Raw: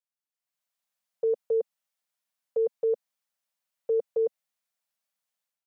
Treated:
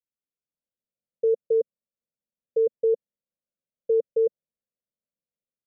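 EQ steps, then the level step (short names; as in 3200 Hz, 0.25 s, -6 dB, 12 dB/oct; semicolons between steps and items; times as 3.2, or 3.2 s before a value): steep low-pass 560 Hz 48 dB/oct; +4.0 dB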